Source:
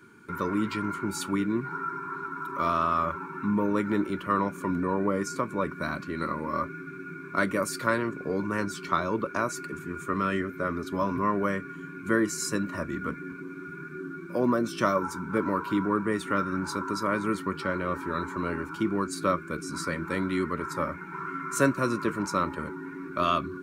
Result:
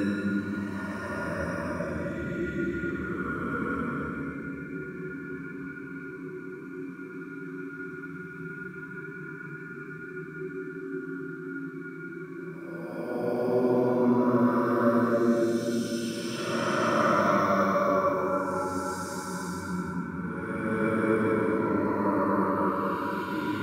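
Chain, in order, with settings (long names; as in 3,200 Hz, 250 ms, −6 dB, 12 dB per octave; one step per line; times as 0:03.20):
extreme stretch with random phases 7.6×, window 0.25 s, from 0:12.60
bucket-brigade delay 260 ms, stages 1,024, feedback 74%, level −8.5 dB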